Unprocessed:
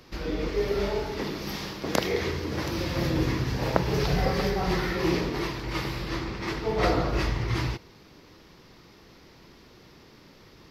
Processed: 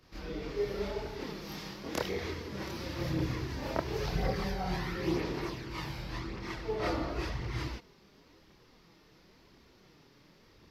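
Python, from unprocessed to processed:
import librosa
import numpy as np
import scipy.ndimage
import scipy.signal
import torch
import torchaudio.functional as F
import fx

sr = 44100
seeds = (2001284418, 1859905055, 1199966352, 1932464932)

y = fx.chorus_voices(x, sr, voices=2, hz=0.47, base_ms=28, depth_ms=3.7, mix_pct=60)
y = F.gain(torch.from_numpy(y), -5.5).numpy()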